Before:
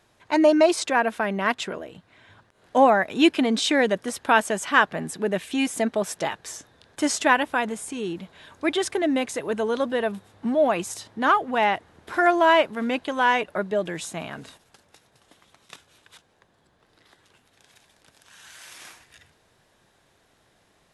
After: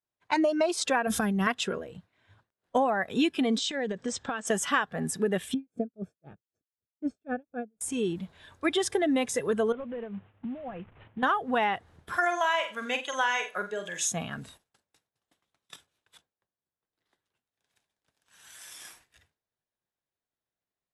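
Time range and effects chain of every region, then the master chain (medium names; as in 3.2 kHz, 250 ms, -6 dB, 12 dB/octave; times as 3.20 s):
1.07–1.47 s: tone controls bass +15 dB, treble +13 dB + compressor with a negative ratio -26 dBFS
3.58–4.47 s: steep low-pass 8.1 kHz 72 dB/octave + compression 12:1, threshold -27 dBFS
5.54–7.81 s: boxcar filter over 45 samples + logarithmic tremolo 3.9 Hz, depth 36 dB
9.72–11.23 s: CVSD coder 16 kbps + compression 16:1, threshold -33 dBFS
12.17–14.12 s: high-pass 1.2 kHz 6 dB/octave + peaking EQ 6.5 kHz +11.5 dB 0.21 oct + flutter echo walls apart 7.8 m, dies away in 0.34 s
whole clip: expander -47 dBFS; spectral noise reduction 9 dB; compression 12:1, threshold -24 dBFS; trim +2 dB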